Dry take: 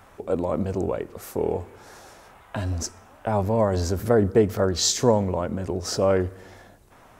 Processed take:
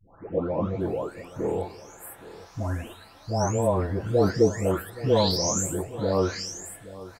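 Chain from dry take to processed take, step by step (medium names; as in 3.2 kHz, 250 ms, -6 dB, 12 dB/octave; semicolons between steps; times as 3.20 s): delay that grows with frequency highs late, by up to 809 ms; delay 822 ms -17.5 dB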